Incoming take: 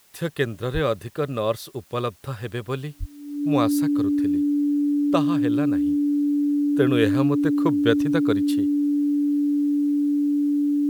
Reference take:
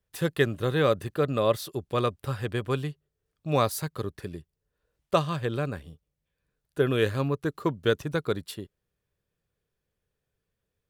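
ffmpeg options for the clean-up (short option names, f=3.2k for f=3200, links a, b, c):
-filter_complex "[0:a]bandreject=f=290:w=30,asplit=3[a][b][c];[a]afade=t=out:st=0.73:d=0.02[d];[b]highpass=f=140:w=0.5412,highpass=f=140:w=1.3066,afade=t=in:st=0.73:d=0.02,afade=t=out:st=0.85:d=0.02[e];[c]afade=t=in:st=0.85:d=0.02[f];[d][e][f]amix=inputs=3:normalize=0,asplit=3[g][h][i];[g]afade=t=out:st=2.99:d=0.02[j];[h]highpass=f=140:w=0.5412,highpass=f=140:w=1.3066,afade=t=in:st=2.99:d=0.02,afade=t=out:st=3.11:d=0.02[k];[i]afade=t=in:st=3.11:d=0.02[l];[j][k][l]amix=inputs=3:normalize=0,agate=range=-21dB:threshold=-32dB,asetnsamples=n=441:p=0,asendcmd='5.83 volume volume -3dB',volume=0dB"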